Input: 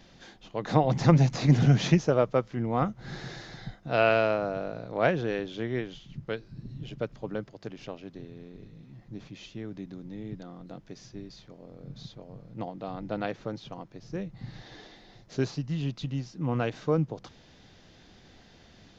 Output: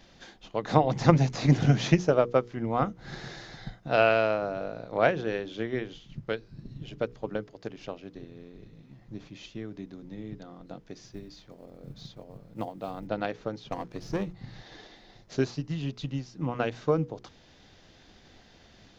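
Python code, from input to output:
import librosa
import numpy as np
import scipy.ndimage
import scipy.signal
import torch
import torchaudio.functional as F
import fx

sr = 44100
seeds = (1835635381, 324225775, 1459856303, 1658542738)

y = fx.block_float(x, sr, bits=7, at=(11.05, 13.09))
y = fx.leveller(y, sr, passes=2, at=(13.71, 14.33))
y = fx.peak_eq(y, sr, hz=150.0, db=-3.0, octaves=1.2)
y = fx.hum_notches(y, sr, base_hz=60, count=8)
y = fx.transient(y, sr, attack_db=4, sustain_db=-1)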